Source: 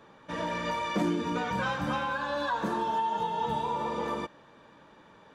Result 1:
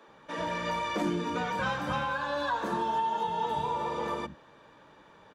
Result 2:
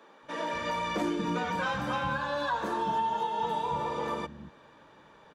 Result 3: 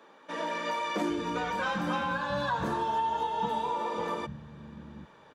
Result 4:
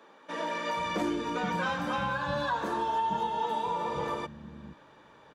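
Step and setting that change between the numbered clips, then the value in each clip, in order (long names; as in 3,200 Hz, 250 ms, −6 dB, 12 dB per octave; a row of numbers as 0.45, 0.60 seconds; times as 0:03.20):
multiband delay without the direct sound, delay time: 80, 230, 790, 470 milliseconds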